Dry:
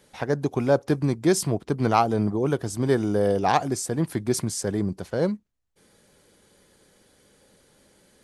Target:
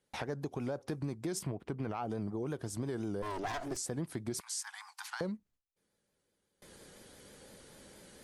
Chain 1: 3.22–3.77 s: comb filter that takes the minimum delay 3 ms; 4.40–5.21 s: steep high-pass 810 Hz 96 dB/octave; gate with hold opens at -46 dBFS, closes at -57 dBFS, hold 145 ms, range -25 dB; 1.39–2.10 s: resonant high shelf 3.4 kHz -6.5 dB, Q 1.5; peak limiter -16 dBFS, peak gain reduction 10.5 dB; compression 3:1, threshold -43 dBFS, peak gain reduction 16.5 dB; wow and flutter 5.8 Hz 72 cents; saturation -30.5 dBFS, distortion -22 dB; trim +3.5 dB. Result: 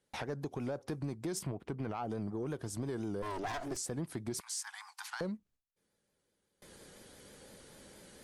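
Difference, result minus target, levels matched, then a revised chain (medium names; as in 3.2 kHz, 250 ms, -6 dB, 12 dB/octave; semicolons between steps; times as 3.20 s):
saturation: distortion +15 dB
3.22–3.77 s: comb filter that takes the minimum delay 3 ms; 4.40–5.21 s: steep high-pass 810 Hz 96 dB/octave; gate with hold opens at -46 dBFS, closes at -57 dBFS, hold 145 ms, range -25 dB; 1.39–2.10 s: resonant high shelf 3.4 kHz -6.5 dB, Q 1.5; peak limiter -16 dBFS, peak gain reduction 10.5 dB; compression 3:1, threshold -43 dBFS, peak gain reduction 16.5 dB; wow and flutter 5.8 Hz 72 cents; saturation -22 dBFS, distortion -37 dB; trim +3.5 dB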